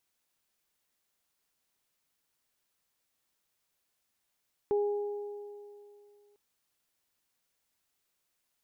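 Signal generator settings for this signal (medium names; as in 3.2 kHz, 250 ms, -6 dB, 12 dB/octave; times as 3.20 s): additive tone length 1.65 s, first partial 411 Hz, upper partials -13 dB, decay 2.53 s, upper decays 2.32 s, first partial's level -24 dB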